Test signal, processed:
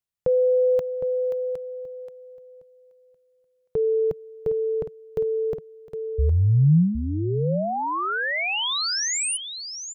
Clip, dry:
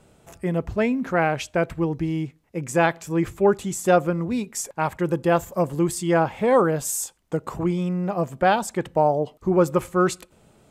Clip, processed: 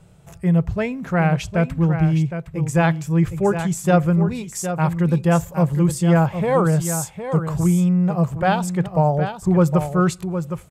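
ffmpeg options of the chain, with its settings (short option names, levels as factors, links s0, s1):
-af "lowshelf=f=200:t=q:w=3:g=6,aecho=1:1:762:0.355"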